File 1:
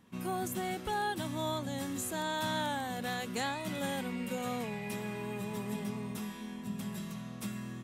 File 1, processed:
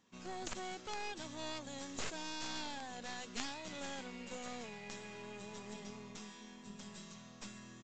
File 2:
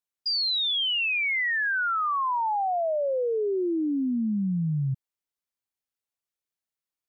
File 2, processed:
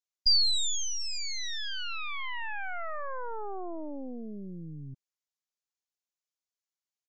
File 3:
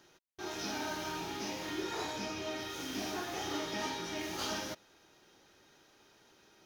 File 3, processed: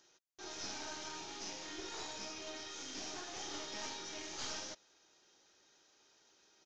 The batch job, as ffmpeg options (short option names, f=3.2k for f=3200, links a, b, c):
-af "bass=f=250:g=-8,treble=f=4k:g=10,aeval=exprs='0.178*(cos(1*acos(clip(val(0)/0.178,-1,1)))-cos(1*PI/2))+0.0562*(cos(2*acos(clip(val(0)/0.178,-1,1)))-cos(2*PI/2))+0.0794*(cos(3*acos(clip(val(0)/0.178,-1,1)))-cos(3*PI/2))+0.00398*(cos(6*acos(clip(val(0)/0.178,-1,1)))-cos(6*PI/2))':c=same,aresample=16000,aresample=44100,volume=1.5dB"